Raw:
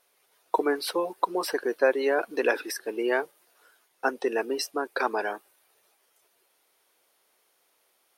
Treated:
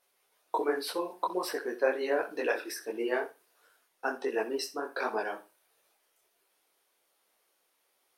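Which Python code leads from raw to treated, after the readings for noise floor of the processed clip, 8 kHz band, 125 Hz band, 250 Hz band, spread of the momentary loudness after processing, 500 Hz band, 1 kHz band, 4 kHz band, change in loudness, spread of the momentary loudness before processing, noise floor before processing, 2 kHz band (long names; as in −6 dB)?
−75 dBFS, −5.0 dB, can't be measured, −5.0 dB, 7 LU, −4.5 dB, −5.0 dB, −5.0 dB, −5.0 dB, 7 LU, −70 dBFS, −5.0 dB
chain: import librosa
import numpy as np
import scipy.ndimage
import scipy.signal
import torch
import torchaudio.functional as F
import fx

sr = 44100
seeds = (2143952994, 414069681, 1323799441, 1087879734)

y = fx.room_flutter(x, sr, wall_m=11.0, rt60_s=0.28)
y = fx.detune_double(y, sr, cents=47)
y = y * librosa.db_to_amplitude(-1.5)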